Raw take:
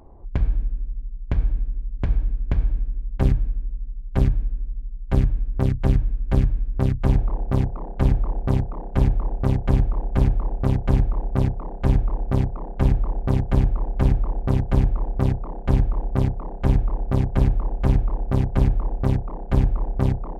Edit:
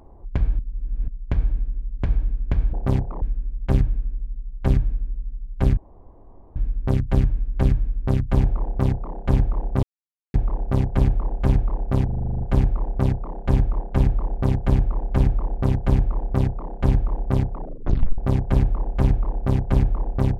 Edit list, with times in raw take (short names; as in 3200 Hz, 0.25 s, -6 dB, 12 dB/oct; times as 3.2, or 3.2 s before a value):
0.59–1.08 reverse
5.28 insert room tone 0.79 s
8.55–9.06 mute
10.77 stutter 0.04 s, 10 plays
12.18–12.67 move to 2.73
16.4 tape stop 0.63 s